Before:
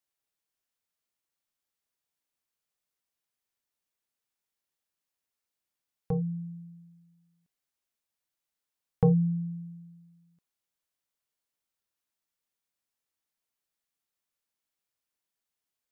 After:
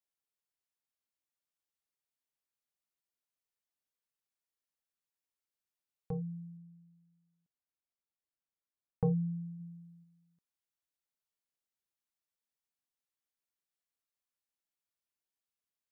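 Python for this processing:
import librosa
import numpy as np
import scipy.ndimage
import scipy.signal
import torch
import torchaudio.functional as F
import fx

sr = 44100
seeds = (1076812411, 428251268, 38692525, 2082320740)

y = fx.lowpass(x, sr, hz=1100.0, slope=6, at=(6.57, 9.03))
y = fx.comb(y, sr, ms=5.0, depth=0.62, at=(9.59, 10.03), fade=0.02)
y = F.gain(torch.from_numpy(y), -8.0).numpy()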